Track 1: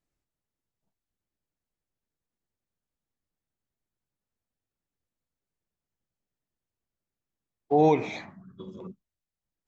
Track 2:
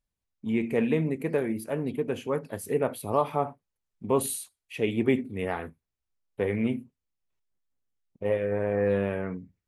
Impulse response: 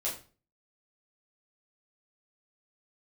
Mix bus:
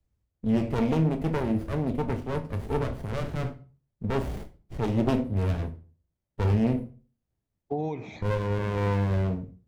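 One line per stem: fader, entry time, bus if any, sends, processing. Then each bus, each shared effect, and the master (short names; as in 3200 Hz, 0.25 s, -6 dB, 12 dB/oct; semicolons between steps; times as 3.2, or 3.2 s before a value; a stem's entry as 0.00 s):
-2.0 dB, 0.00 s, no send, compressor 6:1, threshold -25 dBFS, peak gain reduction 9 dB; auto duck -7 dB, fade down 0.70 s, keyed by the second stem
-1.0 dB, 0.00 s, send -8 dB, one diode to ground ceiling -23 dBFS; running maximum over 33 samples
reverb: on, RT60 0.35 s, pre-delay 7 ms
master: bell 73 Hz +14.5 dB 2.6 oct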